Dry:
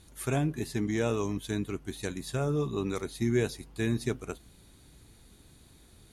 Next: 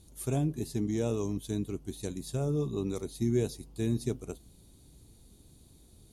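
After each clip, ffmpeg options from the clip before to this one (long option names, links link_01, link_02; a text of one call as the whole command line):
ffmpeg -i in.wav -af "equalizer=frequency=1700:width=0.81:gain=-14.5" out.wav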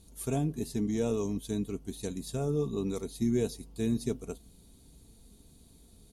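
ffmpeg -i in.wav -af "aecho=1:1:4.4:0.37" out.wav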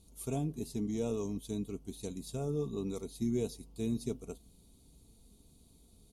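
ffmpeg -i in.wav -af "equalizer=frequency=1700:width_type=o:width=0.28:gain=-13.5,volume=-4.5dB" out.wav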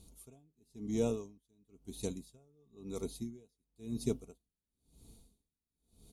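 ffmpeg -i in.wav -af "aeval=exprs='val(0)*pow(10,-38*(0.5-0.5*cos(2*PI*0.98*n/s))/20)':channel_layout=same,volume=3.5dB" out.wav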